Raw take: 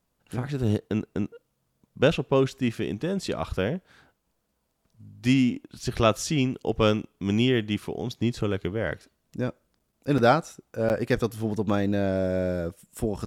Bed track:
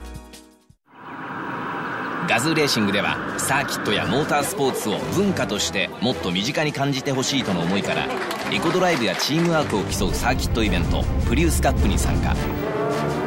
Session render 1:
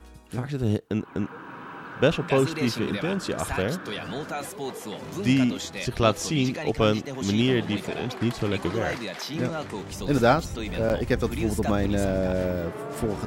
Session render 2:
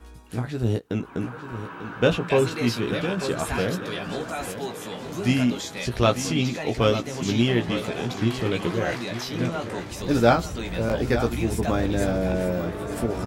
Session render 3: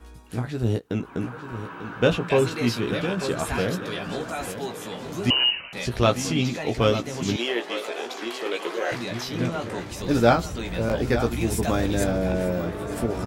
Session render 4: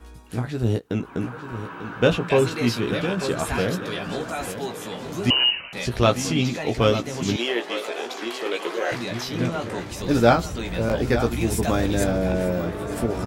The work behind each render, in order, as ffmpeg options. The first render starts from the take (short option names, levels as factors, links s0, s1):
-filter_complex "[1:a]volume=0.251[s0];[0:a][s0]amix=inputs=2:normalize=0"
-filter_complex "[0:a]asplit=2[s0][s1];[s1]adelay=17,volume=0.501[s2];[s0][s2]amix=inputs=2:normalize=0,aecho=1:1:894|1788|2682|3576:0.282|0.101|0.0365|0.0131"
-filter_complex "[0:a]asettb=1/sr,asplit=3[s0][s1][s2];[s0]atrim=end=5.304[s3];[s1]atrim=start=5.3:end=5.73,asetpts=PTS-STARTPTS,afade=t=in:d=0.004:c=qsin,afade=t=out:st=0.426:d=0.004:c=qsin,lowpass=f=2600:t=q:w=0.5098,lowpass=f=2600:t=q:w=0.6013,lowpass=f=2600:t=q:w=0.9,lowpass=f=2600:t=q:w=2.563,afreqshift=-3100[s4];[s2]atrim=start=5.726[s5];[s3][s4]acrossfade=d=0.004:c1=hsin:c2=qsin[s6];[s6][s5]acrossfade=d=0.004:c1=qsin:c2=hsin,asettb=1/sr,asplit=3[s7][s8][s9];[s7]atrim=end=7.364[s10];[s8]atrim=start=7.36:end=8.92,asetpts=PTS-STARTPTS,afade=t=in:d=0.004:c=qsin,afade=t=out:st=1.556:d=0.004:c=qsin,highpass=f=370:w=0.5412,highpass=f=370:w=1.3066[s11];[s9]atrim=start=8.916[s12];[s10][s11]acrossfade=d=0.004:c1=hsin:c2=qsin[s13];[s13][s12]acrossfade=d=0.004:c1=qsin:c2=hsin,asettb=1/sr,asplit=3[s14][s15][s16];[s14]atrim=end=11.414[s17];[s15]atrim=start=11.41:end=12.04,asetpts=PTS-STARTPTS,afade=t=in:d=0.004:c=qsin,afade=t=out:st=0.626:d=0.004:c=qsin,highshelf=f=4200:g=7[s18];[s16]atrim=start=12.036[s19];[s17][s18]acrossfade=d=0.004:c1=hsin:c2=qsin[s20];[s20][s19]acrossfade=d=0.004:c1=qsin:c2=hsin"
-af "volume=1.19"